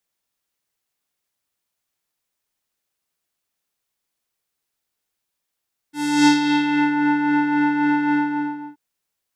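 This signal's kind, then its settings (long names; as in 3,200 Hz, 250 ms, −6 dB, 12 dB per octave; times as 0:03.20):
subtractive patch with tremolo D4, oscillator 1 square, interval +19 semitones, sub −22 dB, filter lowpass, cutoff 1,000 Hz, Q 1.4, filter envelope 3.5 octaves, filter decay 1.04 s, filter sustain 20%, attack 329 ms, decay 0.15 s, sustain −5.5 dB, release 0.65 s, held 2.18 s, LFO 3.7 Hz, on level 4 dB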